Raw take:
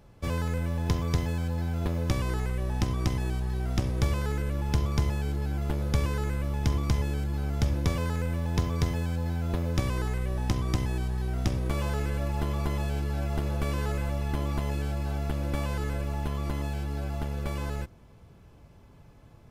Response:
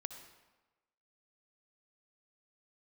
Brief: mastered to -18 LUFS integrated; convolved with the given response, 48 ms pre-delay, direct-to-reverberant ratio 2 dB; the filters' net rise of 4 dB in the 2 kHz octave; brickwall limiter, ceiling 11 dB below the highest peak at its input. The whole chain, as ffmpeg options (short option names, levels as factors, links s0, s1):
-filter_complex "[0:a]equalizer=f=2000:t=o:g=5,alimiter=limit=0.0631:level=0:latency=1,asplit=2[s0][s1];[1:a]atrim=start_sample=2205,adelay=48[s2];[s1][s2]afir=irnorm=-1:irlink=0,volume=1.06[s3];[s0][s3]amix=inputs=2:normalize=0,volume=4.22"